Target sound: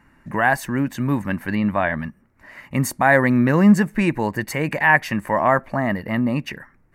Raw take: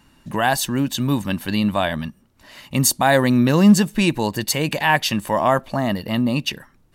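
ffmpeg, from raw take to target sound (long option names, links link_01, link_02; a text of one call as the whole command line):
ffmpeg -i in.wav -filter_complex "[0:a]asettb=1/sr,asplit=3[link_01][link_02][link_03];[link_01]atrim=end=1.554[link_04];[link_02]atrim=start=1.55:end=2.01,asetpts=PTS-STARTPTS,afade=type=in:duration=0.004:curve=qsin,afade=type=out:start_time=0.456:duration=0.004:curve=qsin,acrossover=split=4900[link_05][link_06];[link_06]acompressor=threshold=-52dB:ratio=4:attack=1:release=60[link_07];[link_05][link_07]amix=inputs=2:normalize=0[link_08];[link_03]atrim=start=2.006[link_09];[link_04][link_08]acrossfade=duration=0.004:curve1=hsin:curve2=qsin[link_10];[link_10][link_09]acrossfade=duration=0.004:curve1=qsin:curve2=hsin,highshelf=frequency=2600:width_type=q:width=3:gain=-9,volume=-1dB" out.wav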